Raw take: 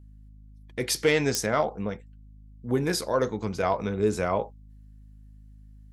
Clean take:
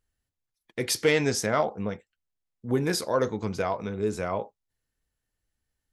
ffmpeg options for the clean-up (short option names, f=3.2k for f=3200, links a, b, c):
-af "adeclick=t=4,bandreject=f=52:t=h:w=4,bandreject=f=104:t=h:w=4,bandreject=f=156:t=h:w=4,bandreject=f=208:t=h:w=4,bandreject=f=260:t=h:w=4,asetnsamples=n=441:p=0,asendcmd='3.63 volume volume -3.5dB',volume=0dB"